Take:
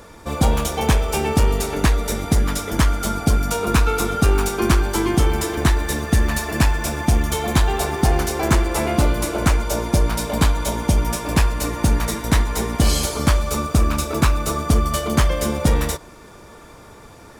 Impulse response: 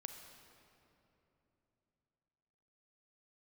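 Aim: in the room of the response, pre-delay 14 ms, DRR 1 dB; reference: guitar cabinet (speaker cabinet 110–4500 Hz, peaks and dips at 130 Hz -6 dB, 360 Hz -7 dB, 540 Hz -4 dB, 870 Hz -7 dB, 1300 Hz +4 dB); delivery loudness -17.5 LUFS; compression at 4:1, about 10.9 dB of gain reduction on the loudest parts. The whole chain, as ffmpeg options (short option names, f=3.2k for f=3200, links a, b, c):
-filter_complex "[0:a]acompressor=threshold=-25dB:ratio=4,asplit=2[a][b];[1:a]atrim=start_sample=2205,adelay=14[c];[b][c]afir=irnorm=-1:irlink=0,volume=2.5dB[d];[a][d]amix=inputs=2:normalize=0,highpass=110,equalizer=f=130:t=q:w=4:g=-6,equalizer=f=360:t=q:w=4:g=-7,equalizer=f=540:t=q:w=4:g=-4,equalizer=f=870:t=q:w=4:g=-7,equalizer=f=1.3k:t=q:w=4:g=4,lowpass=f=4.5k:w=0.5412,lowpass=f=4.5k:w=1.3066,volume=12.5dB"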